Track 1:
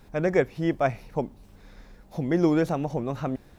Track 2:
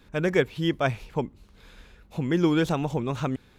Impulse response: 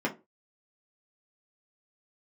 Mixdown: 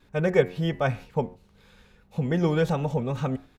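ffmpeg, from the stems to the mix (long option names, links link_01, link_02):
-filter_complex "[0:a]lowpass=frequency=2600:poles=1,bandreject=frequency=90.01:width_type=h:width=4,bandreject=frequency=180.02:width_type=h:width=4,bandreject=frequency=270.03:width_type=h:width=4,bandreject=frequency=360.04:width_type=h:width=4,bandreject=frequency=450.05:width_type=h:width=4,bandreject=frequency=540.06:width_type=h:width=4,bandreject=frequency=630.07:width_type=h:width=4,bandreject=frequency=720.08:width_type=h:width=4,bandreject=frequency=810.09:width_type=h:width=4,bandreject=frequency=900.1:width_type=h:width=4,bandreject=frequency=990.11:width_type=h:width=4,bandreject=frequency=1080.12:width_type=h:width=4,bandreject=frequency=1170.13:width_type=h:width=4,bandreject=frequency=1260.14:width_type=h:width=4,bandreject=frequency=1350.15:width_type=h:width=4,bandreject=frequency=1440.16:width_type=h:width=4,bandreject=frequency=1530.17:width_type=h:width=4,bandreject=frequency=1620.18:width_type=h:width=4,bandreject=frequency=1710.19:width_type=h:width=4,bandreject=frequency=1800.2:width_type=h:width=4,bandreject=frequency=1890.21:width_type=h:width=4,bandreject=frequency=1980.22:width_type=h:width=4,bandreject=frequency=2070.23:width_type=h:width=4,bandreject=frequency=2160.24:width_type=h:width=4,bandreject=frequency=2250.25:width_type=h:width=4,bandreject=frequency=2340.26:width_type=h:width=4,bandreject=frequency=2430.27:width_type=h:width=4,bandreject=frequency=2520.28:width_type=h:width=4,bandreject=frequency=2610.29:width_type=h:width=4,bandreject=frequency=2700.3:width_type=h:width=4,bandreject=frequency=2790.31:width_type=h:width=4,bandreject=frequency=2880.32:width_type=h:width=4,bandreject=frequency=2970.33:width_type=h:width=4,bandreject=frequency=3060.34:width_type=h:width=4,agate=range=-10dB:threshold=-39dB:ratio=16:detection=peak,volume=-0.5dB[link_01];[1:a]volume=-1,adelay=3,volume=-4.5dB[link_02];[link_01][link_02]amix=inputs=2:normalize=0"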